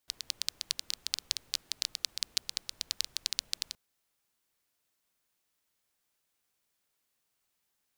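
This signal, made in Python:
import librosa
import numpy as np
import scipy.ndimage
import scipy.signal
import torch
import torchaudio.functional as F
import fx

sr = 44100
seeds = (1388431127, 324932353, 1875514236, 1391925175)

y = fx.rain(sr, seeds[0], length_s=3.67, drops_per_s=11.0, hz=4400.0, bed_db=-25.0)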